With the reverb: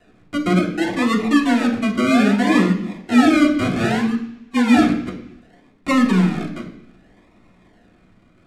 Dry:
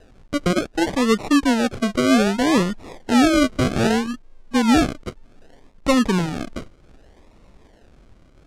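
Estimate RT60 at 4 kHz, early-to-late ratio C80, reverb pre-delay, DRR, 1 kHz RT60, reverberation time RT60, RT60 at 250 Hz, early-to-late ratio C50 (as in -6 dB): 1.0 s, 11.0 dB, 3 ms, -5.5 dB, 0.75 s, 0.70 s, 0.90 s, 8.5 dB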